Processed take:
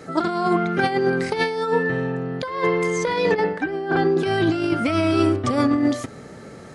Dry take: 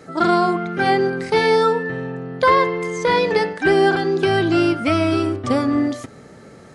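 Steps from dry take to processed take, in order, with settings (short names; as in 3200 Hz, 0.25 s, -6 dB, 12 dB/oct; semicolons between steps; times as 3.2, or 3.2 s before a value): negative-ratio compressor -19 dBFS, ratio -0.5; 3.34–4.18 LPF 1600 Hz 6 dB/oct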